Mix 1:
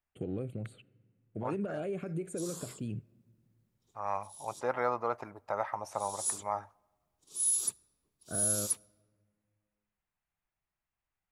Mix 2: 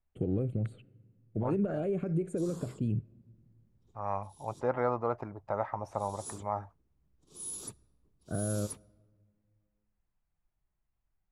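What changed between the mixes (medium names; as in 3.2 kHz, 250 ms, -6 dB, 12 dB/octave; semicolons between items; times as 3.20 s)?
first voice: add tone controls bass -3 dB, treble +5 dB; second voice: send off; master: add tilt EQ -3.5 dB/octave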